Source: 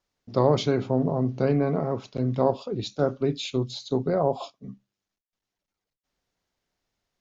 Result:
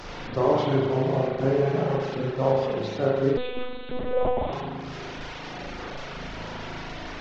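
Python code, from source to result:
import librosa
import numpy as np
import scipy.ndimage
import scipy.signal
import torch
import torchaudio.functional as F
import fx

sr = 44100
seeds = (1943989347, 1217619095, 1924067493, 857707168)

y = fx.delta_mod(x, sr, bps=32000, step_db=-29.0)
y = fx.high_shelf(y, sr, hz=2800.0, db=-8.0)
y = fx.rev_spring(y, sr, rt60_s=1.7, pass_ms=(37,), chirp_ms=45, drr_db=-6.0)
y = fx.dereverb_blind(y, sr, rt60_s=0.54)
y = fx.lpc_monotone(y, sr, seeds[0], pitch_hz=250.0, order=10, at=(3.37, 4.53))
y = fx.hum_notches(y, sr, base_hz=50, count=5)
y = y * librosa.db_to_amplitude(-3.5)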